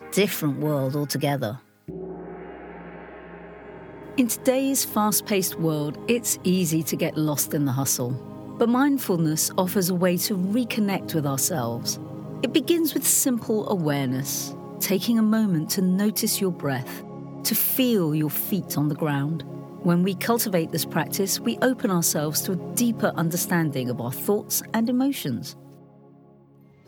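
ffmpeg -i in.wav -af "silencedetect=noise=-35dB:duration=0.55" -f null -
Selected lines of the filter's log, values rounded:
silence_start: 25.53
silence_end: 26.88 | silence_duration: 1.35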